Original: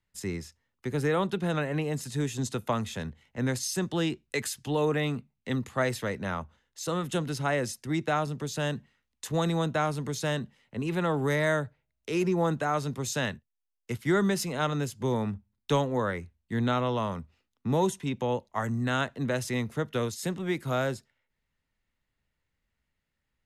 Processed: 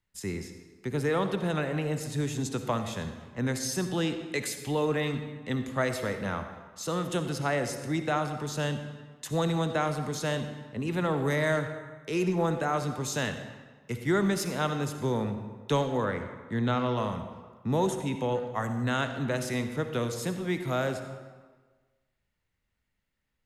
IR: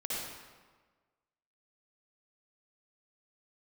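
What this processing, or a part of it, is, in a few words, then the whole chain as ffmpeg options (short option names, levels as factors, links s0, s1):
saturated reverb return: -filter_complex "[0:a]asplit=2[s0][s1];[1:a]atrim=start_sample=2205[s2];[s1][s2]afir=irnorm=-1:irlink=0,asoftclip=type=tanh:threshold=0.133,volume=0.376[s3];[s0][s3]amix=inputs=2:normalize=0,asettb=1/sr,asplit=3[s4][s5][s6];[s4]atrim=end=16.044[s7];[s5]atrim=start=16.04:end=16.97,asetpts=PTS-STARTPTS,afade=t=in:d=0.004:c=qsin,afade=t=out:st=0.926:d=0.004:c=qsin,highshelf=f=10000:g=-11.5[s8];[s6]atrim=start=16.966[s9];[s7][s8]acrossfade=d=0.004:c1=hsin:c2=qsin[s10];[s10][s9]acrossfade=d=0.004:c1=qsin:c2=hsin,volume=0.75"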